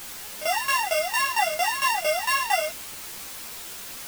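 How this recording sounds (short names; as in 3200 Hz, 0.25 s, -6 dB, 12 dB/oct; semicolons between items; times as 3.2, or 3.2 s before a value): a buzz of ramps at a fixed pitch in blocks of 16 samples; tremolo saw down 4.4 Hz, depth 90%; a quantiser's noise floor 6-bit, dither triangular; a shimmering, thickened sound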